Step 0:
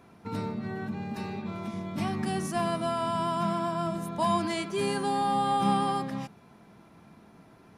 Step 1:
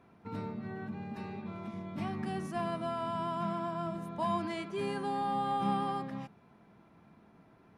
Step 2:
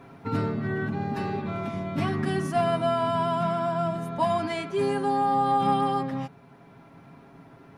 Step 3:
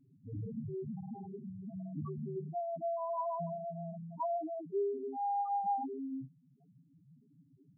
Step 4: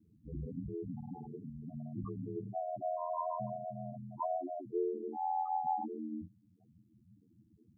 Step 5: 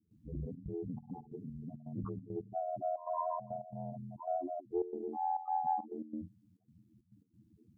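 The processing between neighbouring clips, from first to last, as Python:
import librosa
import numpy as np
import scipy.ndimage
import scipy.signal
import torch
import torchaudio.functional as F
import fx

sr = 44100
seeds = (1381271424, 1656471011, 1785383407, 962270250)

y1 = fx.bass_treble(x, sr, bass_db=0, treble_db=-10)
y1 = y1 * 10.0 ** (-6.0 / 20.0)
y2 = y1 + 0.62 * np.pad(y1, (int(7.3 * sr / 1000.0), 0))[:len(y1)]
y2 = fx.rider(y2, sr, range_db=4, speed_s=2.0)
y2 = y2 * 10.0 ** (8.0 / 20.0)
y3 = fx.rotary_switch(y2, sr, hz=0.85, then_hz=6.3, switch_at_s=5.75)
y3 = fx.spec_topn(y3, sr, count=2)
y3 = y3 * 10.0 ** (-5.5 / 20.0)
y4 = y3 * np.sin(2.0 * np.pi * 42.0 * np.arange(len(y3)) / sr)
y4 = y4 * 10.0 ** (2.0 / 20.0)
y5 = fx.step_gate(y4, sr, bpm=137, pattern='.xxxx.xxx.x', floor_db=-12.0, edge_ms=4.5)
y5 = fx.doppler_dist(y5, sr, depth_ms=0.18)
y5 = y5 * 10.0 ** (1.0 / 20.0)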